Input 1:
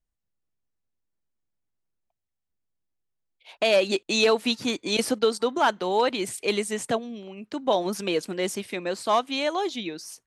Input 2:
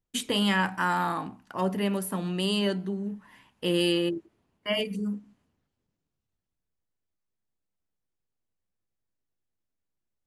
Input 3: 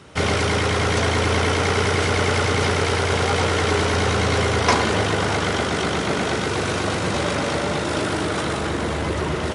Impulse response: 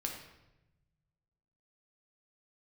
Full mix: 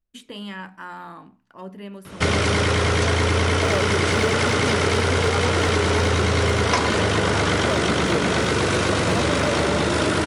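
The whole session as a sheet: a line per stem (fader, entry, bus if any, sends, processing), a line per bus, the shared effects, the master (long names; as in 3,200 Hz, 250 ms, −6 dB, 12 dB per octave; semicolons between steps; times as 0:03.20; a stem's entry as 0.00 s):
+2.0 dB, 0.00 s, no send, running median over 41 samples
−9.0 dB, 0.00 s, no send, high-shelf EQ 7,000 Hz −10.5 dB; mains-hum notches 60/120/180 Hz
+2.5 dB, 2.05 s, send −10 dB, no processing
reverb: on, RT60 0.95 s, pre-delay 6 ms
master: parametric band 780 Hz −5 dB 0.2 octaves; downward compressor, threshold −16 dBFS, peak gain reduction 8 dB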